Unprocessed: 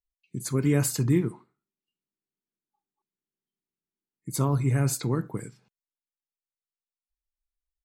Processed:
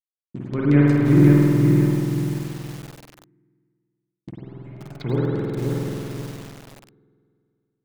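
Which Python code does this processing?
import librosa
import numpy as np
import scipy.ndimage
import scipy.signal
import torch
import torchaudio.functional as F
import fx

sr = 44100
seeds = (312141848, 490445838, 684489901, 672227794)

p1 = fx.tone_stack(x, sr, knobs='6-0-2', at=(4.3, 4.9), fade=0.02)
p2 = np.sign(p1) * np.maximum(np.abs(p1) - 10.0 ** (-43.0 / 20.0), 0.0)
p3 = fx.filter_lfo_lowpass(p2, sr, shape='saw_down', hz=5.6, low_hz=300.0, high_hz=4100.0, q=1.8)
p4 = p3 + fx.echo_single(p3, sr, ms=480, db=-15.5, dry=0)
p5 = fx.rev_spring(p4, sr, rt60_s=2.5, pass_ms=(48,), chirp_ms=70, drr_db=-5.5)
y = fx.echo_crushed(p5, sr, ms=529, feedback_pct=35, bits=6, wet_db=-4.0)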